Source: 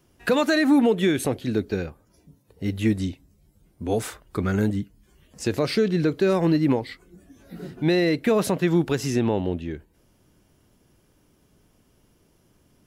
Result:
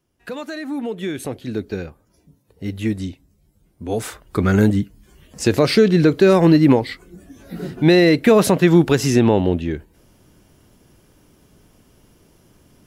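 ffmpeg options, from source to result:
ffmpeg -i in.wav -af "volume=8dB,afade=type=in:start_time=0.7:duration=1.02:silence=0.334965,afade=type=in:start_time=3.88:duration=0.66:silence=0.398107" out.wav

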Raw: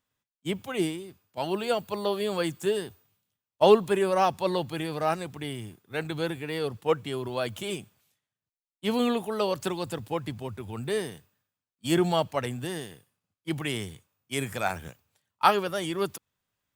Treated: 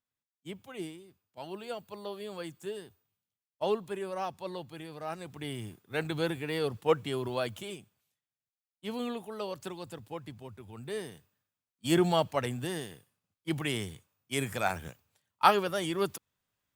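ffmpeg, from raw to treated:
ffmpeg -i in.wav -af "volume=7.5dB,afade=type=in:start_time=5.08:duration=0.59:silence=0.281838,afade=type=out:start_time=7.31:duration=0.44:silence=0.354813,afade=type=in:start_time=10.77:duration=1.17:silence=0.375837" out.wav

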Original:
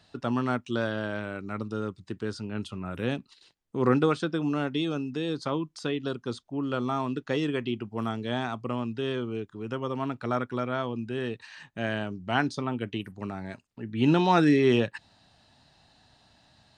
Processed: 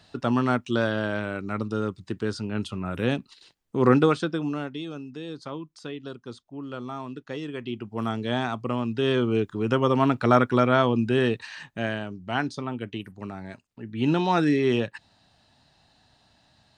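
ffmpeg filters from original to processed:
ffmpeg -i in.wav -af "volume=20.5dB,afade=type=out:start_time=3.97:duration=0.8:silence=0.298538,afade=type=in:start_time=7.51:duration=0.66:silence=0.334965,afade=type=in:start_time=8.83:duration=0.57:silence=0.473151,afade=type=out:start_time=11.14:duration=0.86:silence=0.281838" out.wav

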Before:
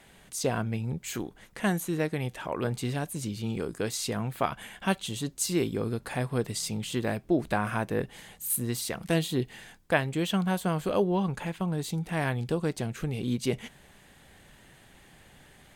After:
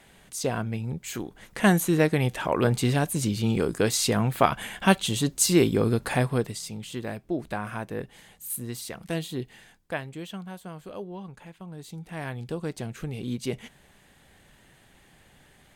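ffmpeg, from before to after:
ffmpeg -i in.wav -af "volume=17.5dB,afade=type=in:start_time=1.25:duration=0.43:silence=0.446684,afade=type=out:start_time=6.14:duration=0.45:silence=0.266073,afade=type=out:start_time=9.48:duration=1.01:silence=0.398107,afade=type=in:start_time=11.63:duration=1.23:silence=0.316228" out.wav

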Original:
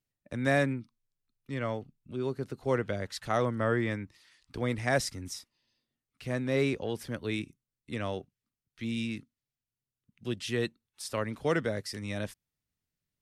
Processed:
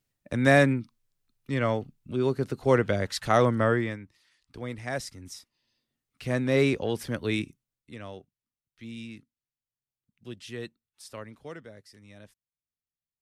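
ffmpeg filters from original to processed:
ffmpeg -i in.wav -af "volume=17dB,afade=type=out:start_time=3.54:duration=0.45:silence=0.251189,afade=type=in:start_time=5.17:duration=1.18:silence=0.316228,afade=type=out:start_time=7.43:duration=0.51:silence=0.251189,afade=type=out:start_time=11.05:duration=0.53:silence=0.398107" out.wav

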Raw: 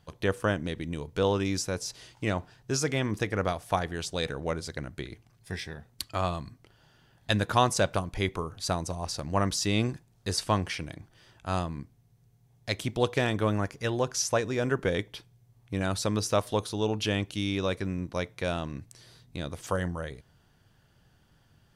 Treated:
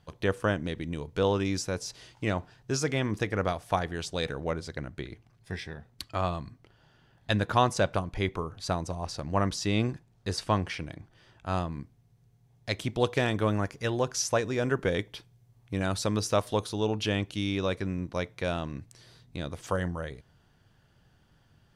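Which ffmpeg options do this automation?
ffmpeg -i in.wav -af "asetnsamples=nb_out_samples=441:pad=0,asendcmd='4.44 lowpass f 3700;11.72 lowpass f 6400;12.98 lowpass f 11000;16.8 lowpass f 6400',lowpass=frequency=6700:poles=1" out.wav

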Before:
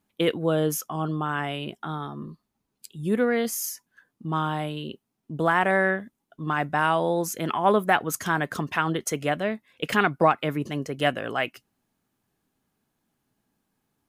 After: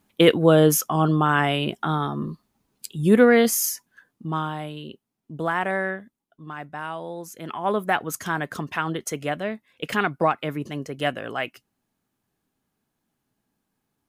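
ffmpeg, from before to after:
ffmpeg -i in.wav -af "volume=16.5dB,afade=type=out:start_time=3.4:duration=1.14:silence=0.281838,afade=type=out:start_time=5.66:duration=0.82:silence=0.446684,afade=type=in:start_time=7.3:duration=0.61:silence=0.375837" out.wav

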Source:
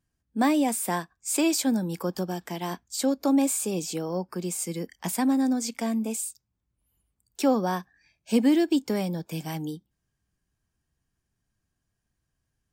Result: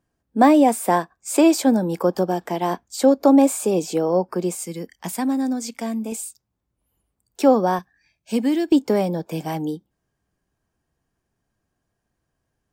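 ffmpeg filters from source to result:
ffmpeg -i in.wav -af "asetnsamples=nb_out_samples=441:pad=0,asendcmd='4.55 equalizer g 2;6.12 equalizer g 9;7.79 equalizer g 0.5;8.72 equalizer g 11',equalizer=frequency=580:width_type=o:width=2.7:gain=12.5" out.wav

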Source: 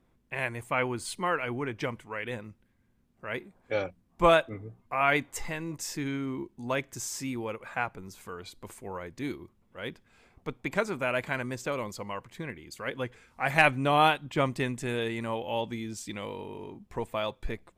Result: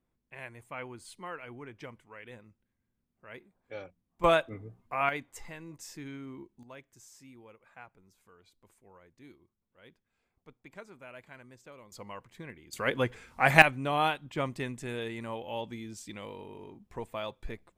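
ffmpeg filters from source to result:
ffmpeg -i in.wav -af "asetnsamples=nb_out_samples=441:pad=0,asendcmd='4.24 volume volume -3dB;5.09 volume volume -10dB;6.63 volume volume -19dB;11.92 volume volume -7dB;12.73 volume volume 5dB;13.62 volume volume -5.5dB',volume=-12.5dB" out.wav

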